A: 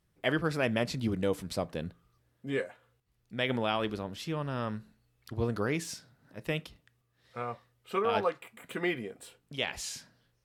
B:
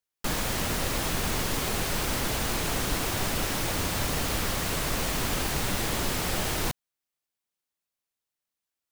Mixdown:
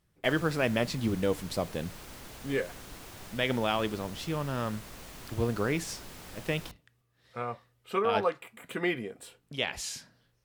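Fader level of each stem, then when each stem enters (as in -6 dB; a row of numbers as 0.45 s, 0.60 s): +1.5 dB, -18.0 dB; 0.00 s, 0.00 s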